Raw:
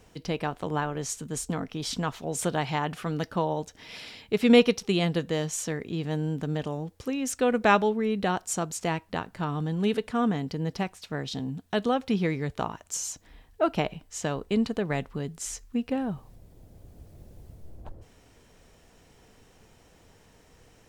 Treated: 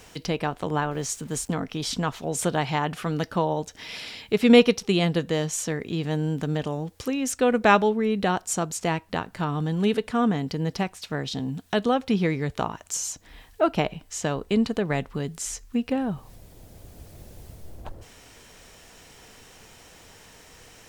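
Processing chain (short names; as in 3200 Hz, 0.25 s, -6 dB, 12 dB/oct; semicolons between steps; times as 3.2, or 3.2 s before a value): 0.91–1.51 sample gate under -50 dBFS; mismatched tape noise reduction encoder only; gain +3 dB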